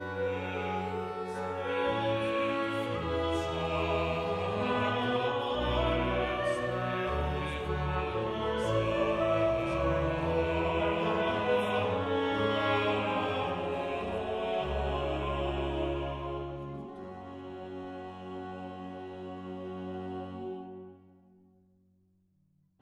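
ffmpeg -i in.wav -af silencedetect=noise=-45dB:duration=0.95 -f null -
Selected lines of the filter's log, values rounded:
silence_start: 20.93
silence_end: 22.82 | silence_duration: 1.89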